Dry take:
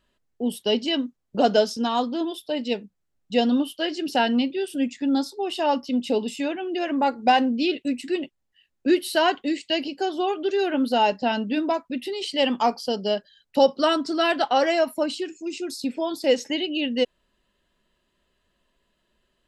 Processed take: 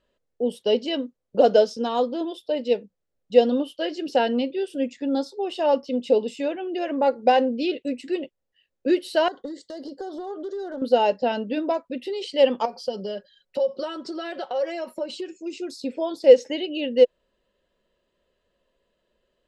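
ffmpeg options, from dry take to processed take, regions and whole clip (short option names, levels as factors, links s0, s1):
-filter_complex "[0:a]asettb=1/sr,asplit=3[s0][s1][s2];[s0]atrim=end=9.284[s3];[s1]atrim=start=9.28:end=10.82,asetpts=PTS-STARTPTS,afade=t=in:d=0.004:c=qsin,afade=t=out:st=1.536:d=0.004:c=qsin,acompressor=threshold=0.0398:ratio=12:attack=3.2:release=140:knee=1:detection=peak,volume=23.7,asoftclip=hard,volume=0.0422,asuperstop=centerf=2500:order=4:qfactor=1.3[s4];[s2]atrim=start=10.816[s5];[s3][s4]acrossfade=d=0.004:c1=hsin:c2=qsin[s6];[s6][s5]acrossfade=d=0.004:c1=qsin:c2=hsin,asettb=1/sr,asplit=3[s7][s8][s9];[s7]atrim=end=12.654[s10];[s8]atrim=start=12.65:end=15.38,asetpts=PTS-STARTPTS,afade=t=in:d=0.004:c=qsin,afade=t=out:st=2.726:d=0.004:c=qsin,aecho=1:1:5.4:0.62,atrim=end_sample=120393,acompressor=threshold=0.0447:ratio=6:attack=3.2:release=140:knee=1:detection=peak[s11];[s9]atrim=start=15.376[s12];[s10][s11]acrossfade=d=0.004:c1=hsin:c2=qsin[s13];[s13][s12]acrossfade=d=0.004:c1=qsin:c2=hsin,lowpass=7700,equalizer=f=510:w=2.5:g=13.5,volume=0.596"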